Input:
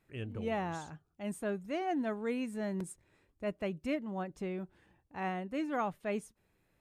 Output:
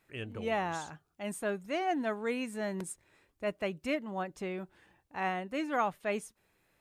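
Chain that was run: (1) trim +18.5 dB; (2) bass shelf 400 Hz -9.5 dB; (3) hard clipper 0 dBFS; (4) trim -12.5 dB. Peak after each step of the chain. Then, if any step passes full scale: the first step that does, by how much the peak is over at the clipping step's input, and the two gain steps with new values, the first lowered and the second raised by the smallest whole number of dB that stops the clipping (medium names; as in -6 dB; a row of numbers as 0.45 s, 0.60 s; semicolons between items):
-4.5 dBFS, -6.0 dBFS, -6.0 dBFS, -18.5 dBFS; nothing clips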